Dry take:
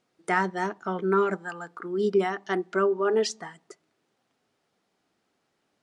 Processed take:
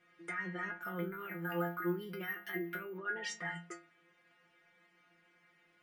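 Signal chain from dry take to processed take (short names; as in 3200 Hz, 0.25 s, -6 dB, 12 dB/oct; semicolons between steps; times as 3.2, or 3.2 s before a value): EQ curve 940 Hz 0 dB, 2000 Hz +14 dB, 4400 Hz -6 dB; compressor 2:1, threshold -28 dBFS, peak gain reduction 9.5 dB; limiter -31 dBFS, peak gain reduction 18 dB; metallic resonator 170 Hz, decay 0.34 s, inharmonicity 0.002; 0.81–2.98 careless resampling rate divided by 3×, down filtered, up hold; gain +14 dB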